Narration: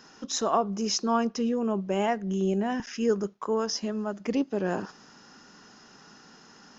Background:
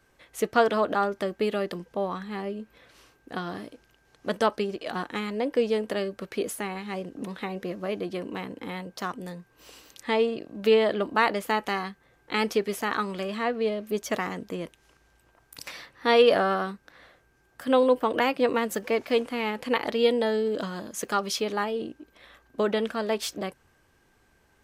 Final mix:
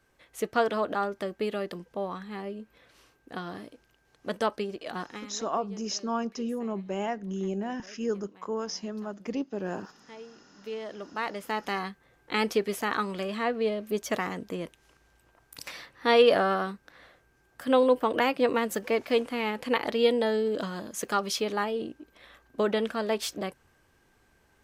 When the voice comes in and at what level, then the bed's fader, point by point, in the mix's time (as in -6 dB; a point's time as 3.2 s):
5.00 s, -5.0 dB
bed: 5.03 s -4 dB
5.5 s -22 dB
10.37 s -22 dB
11.84 s -1 dB